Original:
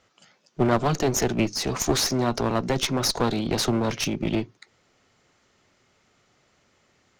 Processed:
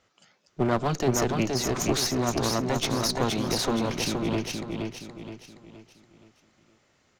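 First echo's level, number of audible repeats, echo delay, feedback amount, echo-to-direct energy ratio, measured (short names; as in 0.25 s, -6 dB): -4.0 dB, 4, 0.471 s, 40%, -3.0 dB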